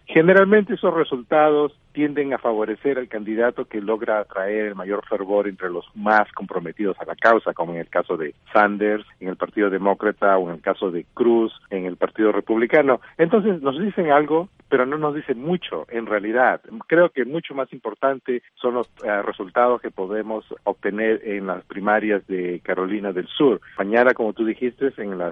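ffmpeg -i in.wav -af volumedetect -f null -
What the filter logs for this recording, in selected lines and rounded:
mean_volume: -20.8 dB
max_volume: -1.4 dB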